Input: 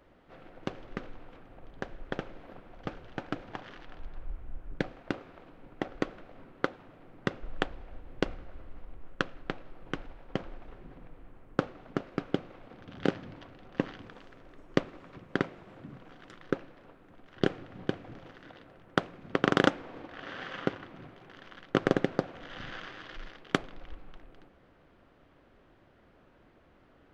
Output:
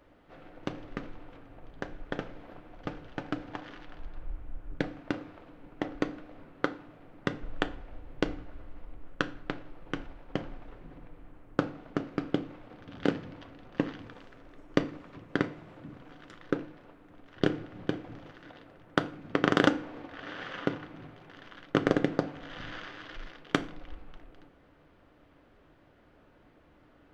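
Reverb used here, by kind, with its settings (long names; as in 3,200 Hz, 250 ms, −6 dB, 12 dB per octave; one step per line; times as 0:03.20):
feedback delay network reverb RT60 0.44 s, low-frequency decay 1.45×, high-frequency decay 0.8×, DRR 10 dB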